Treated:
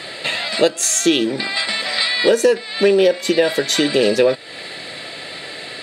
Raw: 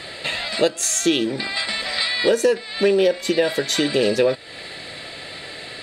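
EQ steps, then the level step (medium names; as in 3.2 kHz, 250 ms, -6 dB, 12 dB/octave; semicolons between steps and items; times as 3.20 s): high-pass 140 Hz 12 dB/octave; +3.5 dB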